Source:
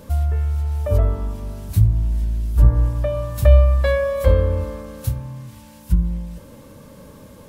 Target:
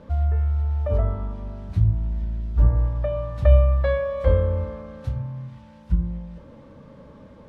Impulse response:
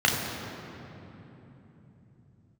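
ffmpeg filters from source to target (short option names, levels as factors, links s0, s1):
-filter_complex "[0:a]lowpass=2800,asplit=2[s0][s1];[1:a]atrim=start_sample=2205,afade=t=out:st=0.17:d=0.01,atrim=end_sample=7938[s2];[s1][s2]afir=irnorm=-1:irlink=0,volume=0.0631[s3];[s0][s3]amix=inputs=2:normalize=0,volume=0.631"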